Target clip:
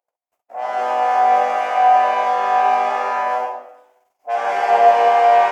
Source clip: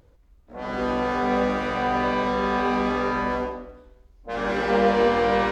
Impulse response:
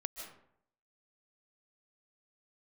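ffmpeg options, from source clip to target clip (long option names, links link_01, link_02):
-af "agate=range=-28dB:threshold=-52dB:ratio=16:detection=peak,aexciter=amount=1.7:drive=0.9:freq=2100,highpass=frequency=730:width_type=q:width=5.9"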